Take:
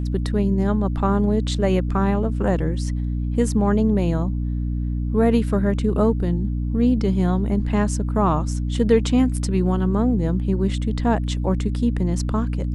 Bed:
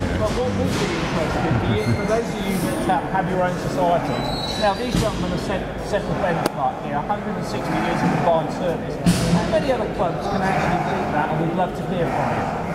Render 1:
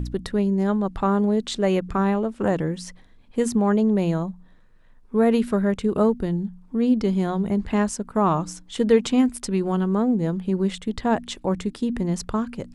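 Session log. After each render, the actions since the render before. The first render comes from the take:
hum removal 60 Hz, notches 5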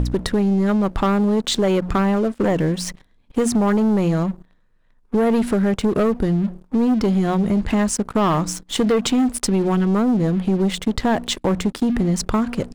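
leveller curve on the samples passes 3
downward compressor 2.5 to 1, threshold −18 dBFS, peak gain reduction 6.5 dB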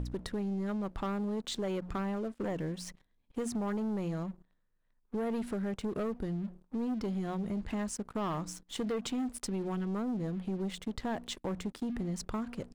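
level −16.5 dB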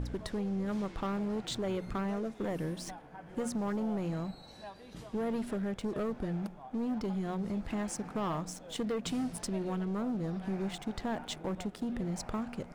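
mix in bed −28 dB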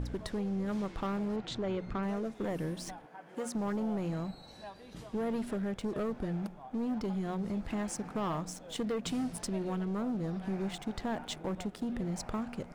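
0:01.36–0:02.03: high-frequency loss of the air 97 metres
0:03.06–0:03.55: Bessel high-pass filter 320 Hz

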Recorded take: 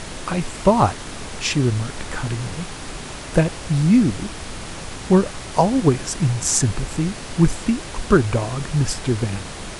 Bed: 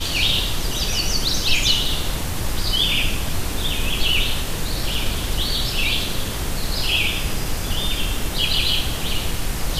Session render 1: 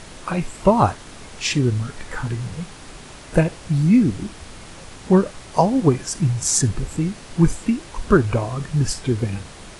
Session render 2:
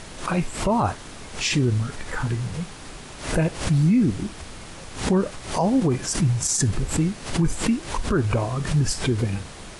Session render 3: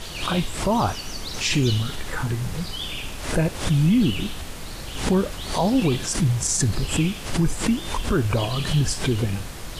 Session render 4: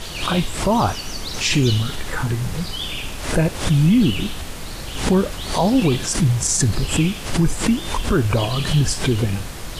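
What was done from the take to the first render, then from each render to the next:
noise reduction from a noise print 7 dB
brickwall limiter −12.5 dBFS, peak gain reduction 11 dB; background raised ahead of every attack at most 110 dB per second
mix in bed −12.5 dB
level +3.5 dB

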